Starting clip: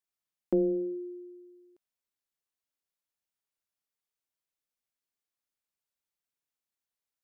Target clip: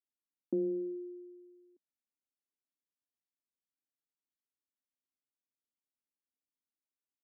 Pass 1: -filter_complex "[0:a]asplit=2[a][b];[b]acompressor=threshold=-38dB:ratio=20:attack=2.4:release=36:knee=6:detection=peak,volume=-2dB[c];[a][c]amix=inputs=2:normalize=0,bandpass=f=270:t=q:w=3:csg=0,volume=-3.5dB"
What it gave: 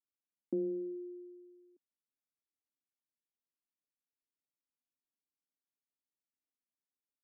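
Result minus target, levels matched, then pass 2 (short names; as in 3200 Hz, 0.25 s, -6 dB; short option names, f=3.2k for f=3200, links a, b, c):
compressor: peak gain reduction +10.5 dB
-filter_complex "[0:a]asplit=2[a][b];[b]acompressor=threshold=-27dB:ratio=20:attack=2.4:release=36:knee=6:detection=peak,volume=-2dB[c];[a][c]amix=inputs=2:normalize=0,bandpass=f=270:t=q:w=3:csg=0,volume=-3.5dB"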